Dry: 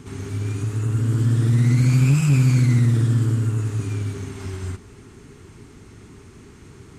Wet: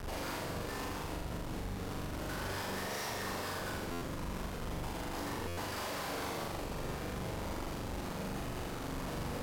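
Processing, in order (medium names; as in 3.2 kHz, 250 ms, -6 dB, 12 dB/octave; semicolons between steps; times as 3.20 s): fifteen-band graphic EQ 100 Hz +8 dB, 630 Hz +11 dB, 6.3 kHz +10 dB; reverse; compression 5:1, threshold -27 dBFS, peak gain reduction 15.5 dB; reverse; LFO high-pass saw down 5.9 Hz 580–1800 Hz; Schmitt trigger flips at -43 dBFS; on a send: flutter echo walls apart 5.3 m, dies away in 0.82 s; on the sum: speed mistake 45 rpm record played at 33 rpm; buffer glitch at 3.91/5.47 s, samples 512, times 8; trim +3.5 dB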